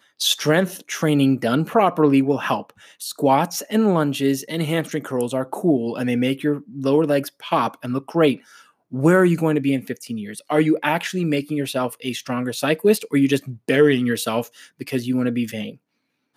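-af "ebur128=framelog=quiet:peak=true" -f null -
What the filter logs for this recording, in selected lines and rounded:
Integrated loudness:
  I:         -20.6 LUFS
  Threshold: -30.9 LUFS
Loudness range:
  LRA:         2.3 LU
  Threshold: -41.0 LUFS
  LRA low:   -22.1 LUFS
  LRA high:  -19.8 LUFS
True peak:
  Peak:       -4.8 dBFS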